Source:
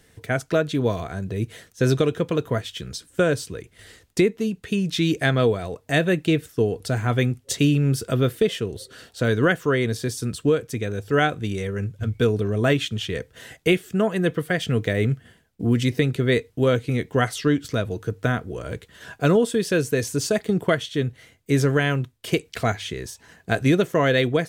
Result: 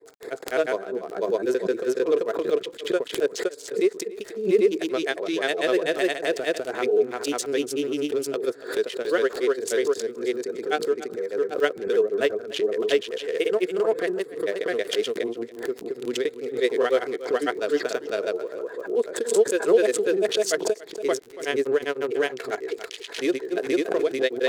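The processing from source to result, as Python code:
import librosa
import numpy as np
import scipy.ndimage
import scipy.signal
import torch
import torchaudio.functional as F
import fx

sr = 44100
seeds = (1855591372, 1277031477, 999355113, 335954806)

p1 = fx.wiener(x, sr, points=15)
p2 = fx.ladder_highpass(p1, sr, hz=360.0, resonance_pct=60)
p3 = fx.high_shelf(p2, sr, hz=2600.0, db=9.0)
p4 = fx.dmg_crackle(p3, sr, seeds[0], per_s=35.0, level_db=-46.0)
p5 = fx.transient(p4, sr, attack_db=-5, sustain_db=0)
p6 = fx.rider(p5, sr, range_db=3, speed_s=2.0)
p7 = p5 + (p6 * librosa.db_to_amplitude(0.5))
p8 = fx.granulator(p7, sr, seeds[1], grain_ms=100.0, per_s=20.0, spray_ms=521.0, spread_st=0)
p9 = p8 + fx.echo_single(p8, sr, ms=283, db=-20.0, dry=0)
y = fx.pre_swell(p9, sr, db_per_s=120.0)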